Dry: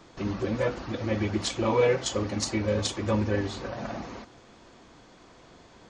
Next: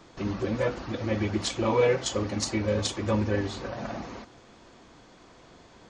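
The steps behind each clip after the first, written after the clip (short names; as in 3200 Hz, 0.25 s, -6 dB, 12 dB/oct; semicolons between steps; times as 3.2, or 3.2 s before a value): nothing audible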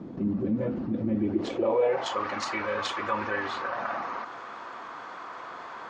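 dynamic EQ 2700 Hz, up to +5 dB, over -44 dBFS, Q 0.82; band-pass sweep 220 Hz -> 1200 Hz, 1.11–2.25; fast leveller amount 50%; gain +1.5 dB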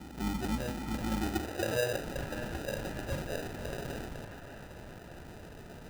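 octaver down 2 oct, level -3 dB; sample-rate reducer 1100 Hz, jitter 0%; band-limited delay 0.594 s, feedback 59%, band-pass 1300 Hz, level -8 dB; gain -7 dB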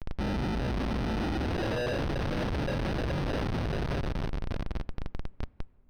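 Schmitt trigger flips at -39.5 dBFS; polynomial smoothing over 15 samples; on a send at -23.5 dB: reverb RT60 2.2 s, pre-delay 6 ms; on the sum: gain +7 dB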